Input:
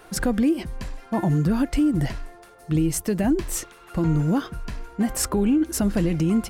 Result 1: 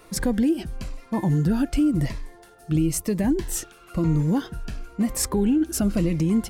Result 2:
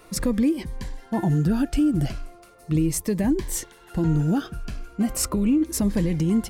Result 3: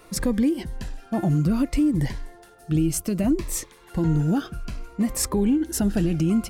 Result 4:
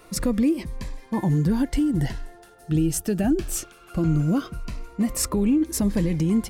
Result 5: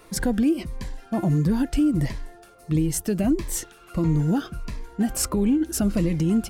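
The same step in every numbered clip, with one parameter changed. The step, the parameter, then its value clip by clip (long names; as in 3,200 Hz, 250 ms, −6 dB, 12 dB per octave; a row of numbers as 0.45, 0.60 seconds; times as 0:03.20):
phaser whose notches keep moving one way, speed: 0.99, 0.37, 0.6, 0.2, 1.5 Hertz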